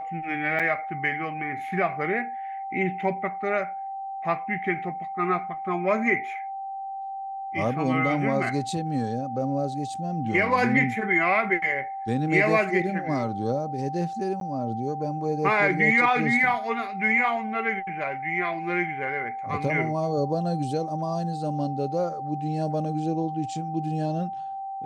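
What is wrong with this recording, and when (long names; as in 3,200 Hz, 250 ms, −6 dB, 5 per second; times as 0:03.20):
whistle 780 Hz −31 dBFS
0:00.59–0:00.60: drop-out 6.4 ms
0:14.40–0:14.41: drop-out 12 ms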